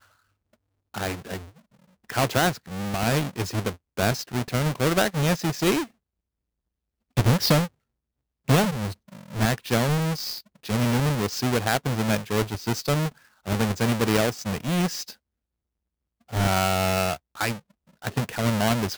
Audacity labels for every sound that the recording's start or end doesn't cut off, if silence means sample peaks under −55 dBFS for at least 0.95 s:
7.170000	15.150000	sound